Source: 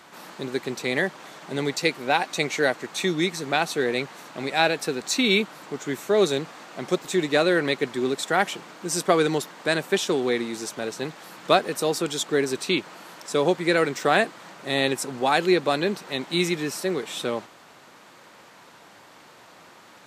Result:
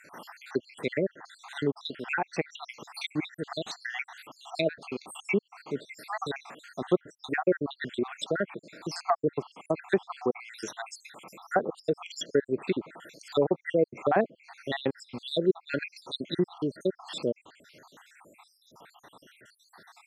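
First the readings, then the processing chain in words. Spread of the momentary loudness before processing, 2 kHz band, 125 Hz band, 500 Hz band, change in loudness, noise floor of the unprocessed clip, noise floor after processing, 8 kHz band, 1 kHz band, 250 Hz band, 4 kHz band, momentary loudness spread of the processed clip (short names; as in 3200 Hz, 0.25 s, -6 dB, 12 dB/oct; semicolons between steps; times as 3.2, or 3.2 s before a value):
11 LU, -10.0 dB, -5.5 dB, -6.0 dB, -7.5 dB, -50 dBFS, -68 dBFS, -15.5 dB, -8.5 dB, -6.0 dB, -11.0 dB, 13 LU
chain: random spectral dropouts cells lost 73%; treble ducked by the level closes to 950 Hz, closed at -23 dBFS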